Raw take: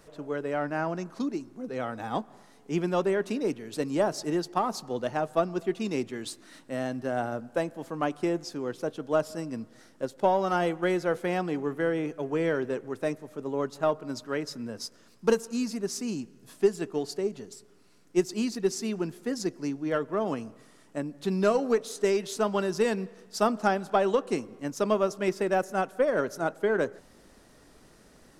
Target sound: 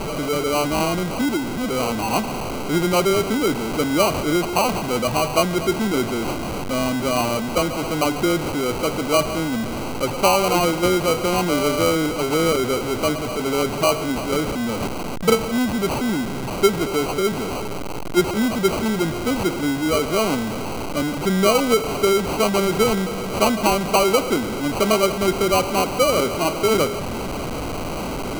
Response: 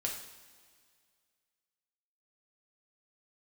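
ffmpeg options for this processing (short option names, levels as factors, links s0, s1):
-filter_complex "[0:a]aeval=exprs='val(0)+0.5*0.0501*sgn(val(0))':c=same,asettb=1/sr,asplit=3[s0][s1][s2];[s0]atrim=end=11.494[s3];[s1]atrim=start=11.49:end=11.91,asetpts=PTS-STARTPTS,afade=t=in:d=0.004:c=qsin,afade=t=out:st=0.416:d=0.004:c=qsin,aeval=exprs='val(0)+0.0447*sin(2*PI*590*n/s)':c=same[s4];[s2]atrim=start=11.906[s5];[s3][s4]acrossfade=d=0.004:c1=hsin:c2=qsin[s6];[s6][s5]acrossfade=d=0.004:c1=qsin:c2=hsin,acrusher=samples=25:mix=1:aa=0.000001,volume=1.78"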